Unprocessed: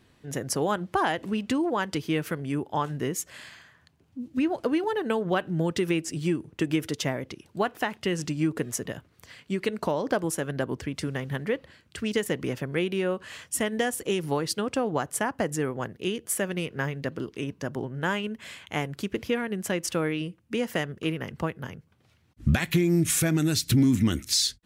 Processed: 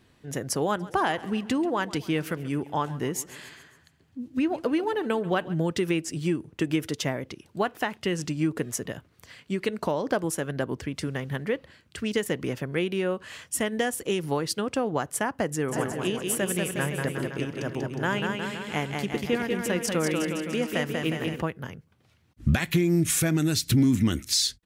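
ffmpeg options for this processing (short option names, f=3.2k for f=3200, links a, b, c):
-filter_complex "[0:a]asplit=3[a][b][c];[a]afade=t=out:st=0.79:d=0.02[d];[b]aecho=1:1:137|274|411|548|685:0.119|0.0666|0.0373|0.0209|0.0117,afade=t=in:st=0.79:d=0.02,afade=t=out:st=5.54:d=0.02[e];[c]afade=t=in:st=5.54:d=0.02[f];[d][e][f]amix=inputs=3:normalize=0,asplit=3[g][h][i];[g]afade=t=out:st=15.68:d=0.02[j];[h]aecho=1:1:190|361|514.9|653.4|778.1|890.3:0.631|0.398|0.251|0.158|0.1|0.0631,afade=t=in:st=15.68:d=0.02,afade=t=out:st=21.4:d=0.02[k];[i]afade=t=in:st=21.4:d=0.02[l];[j][k][l]amix=inputs=3:normalize=0"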